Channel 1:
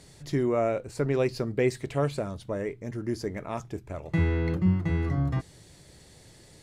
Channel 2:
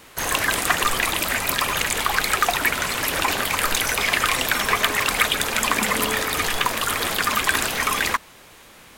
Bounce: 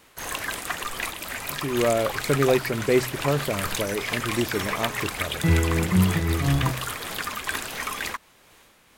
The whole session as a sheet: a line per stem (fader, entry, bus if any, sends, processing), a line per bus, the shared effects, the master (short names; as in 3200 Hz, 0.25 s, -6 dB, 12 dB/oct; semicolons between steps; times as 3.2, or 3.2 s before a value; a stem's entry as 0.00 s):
0.0 dB, 1.30 s, no send, AGC gain up to 6.5 dB; de-hum 63.9 Hz, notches 3
-6.5 dB, 0.00 s, no send, dry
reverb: off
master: noise-modulated level, depth 55%